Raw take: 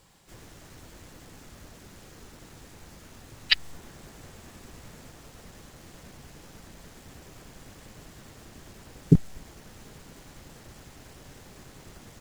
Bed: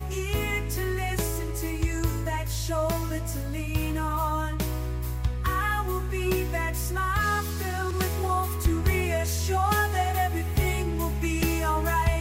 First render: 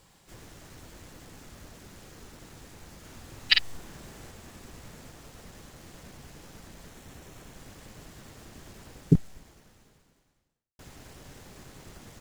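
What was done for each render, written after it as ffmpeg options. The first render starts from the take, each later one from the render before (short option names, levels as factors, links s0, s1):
-filter_complex "[0:a]asettb=1/sr,asplit=3[s0][s1][s2];[s0]atrim=end=2.994[s3];[s1]atrim=start=2.99:end=4.31,asetpts=PTS-STARTPTS,afade=t=in:d=0.004:c=qsin,afade=t=out:st=1.316:d=0.004:c=qsin,asplit=2[s4][s5];[s5]adelay=49,volume=0.631[s6];[s4][s6]amix=inputs=2:normalize=0,atrim=end_sample=58212[s7];[s2]atrim=start=4.306[s8];[s3][s7]acrossfade=d=0.004:c1=hsin:c2=qsin[s9];[s9][s8]acrossfade=d=0.004:c1=qsin:c2=hsin,asettb=1/sr,asplit=3[s10][s11][s12];[s10]atrim=end=6.894[s13];[s11]atrim=start=6.89:end=7.56,asetpts=PTS-STARTPTS,afade=t=in:d=0.004:c=qsin,afade=t=out:st=0.666:d=0.004:c=qsin,bandreject=f=4800:w=11[s14];[s12]atrim=start=7.556[s15];[s13][s14]acrossfade=d=0.004:c1=hsin:c2=qsin[s16];[s16][s15]acrossfade=d=0.004:c1=qsin:c2=hsin,asplit=2[s17][s18];[s17]atrim=end=10.79,asetpts=PTS-STARTPTS,afade=t=out:st=8.87:d=1.92:c=qua[s19];[s18]atrim=start=10.79,asetpts=PTS-STARTPTS,afade=t=in:d=0.004:c=hsin[s20];[s19][s20]concat=n=2:v=0:a=1"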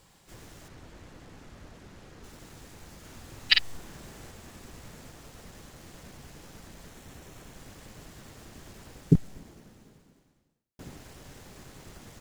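-filter_complex "[0:a]asettb=1/sr,asplit=3[s0][s1][s2];[s0]atrim=end=0.684[s3];[s1]atrim=start=0.68:end=2.24,asetpts=PTS-STARTPTS,afade=t=in:d=0.004:c=qsin,afade=t=out:st=1.556:d=0.004:c=qsin,aemphasis=mode=reproduction:type=50kf[s4];[s2]atrim=start=2.236[s5];[s3][s4]acrossfade=d=0.004:c1=hsin:c2=qsin[s6];[s6][s5]acrossfade=d=0.004:c1=qsin:c2=hsin,asettb=1/sr,asplit=3[s7][s8][s9];[s7]atrim=end=9.224[s10];[s8]atrim=start=9.22:end=10.97,asetpts=PTS-STARTPTS,afade=t=in:d=0.004:c=qsin,afade=t=out:st=1.746:d=0.004:c=qsin,equalizer=f=230:w=0.56:g=9[s11];[s9]atrim=start=10.966[s12];[s10][s11]acrossfade=d=0.004:c1=hsin:c2=qsin[s13];[s13][s12]acrossfade=d=0.004:c1=qsin:c2=hsin"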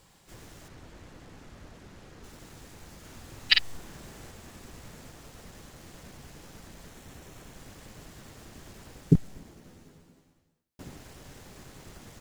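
-filter_complex "[0:a]asettb=1/sr,asplit=3[s0][s1][s2];[s0]atrim=end=9.634[s3];[s1]atrim=start=9.63:end=10.82,asetpts=PTS-STARTPTS,afade=t=in:d=0.004:c=qsin,afade=t=out:st=1.186:d=0.004:c=qsin,asplit=2[s4][s5];[s5]adelay=12,volume=0.75[s6];[s4][s6]amix=inputs=2:normalize=0,atrim=end_sample=52479[s7];[s2]atrim=start=10.816[s8];[s3][s7]acrossfade=d=0.004:c1=hsin:c2=qsin[s9];[s9][s8]acrossfade=d=0.004:c1=qsin:c2=hsin"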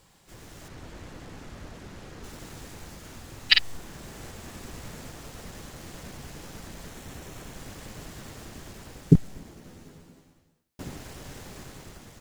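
-af "dynaudnorm=f=170:g=7:m=2"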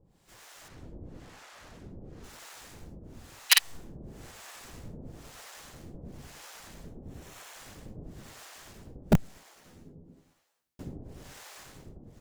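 -filter_complex "[0:a]aeval=exprs='(mod(2.37*val(0)+1,2)-1)/2.37':c=same,acrossover=split=600[s0][s1];[s0]aeval=exprs='val(0)*(1-1/2+1/2*cos(2*PI*1*n/s))':c=same[s2];[s1]aeval=exprs='val(0)*(1-1/2-1/2*cos(2*PI*1*n/s))':c=same[s3];[s2][s3]amix=inputs=2:normalize=0"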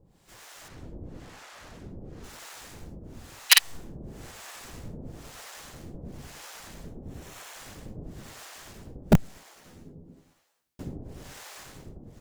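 -af "volume=1.5"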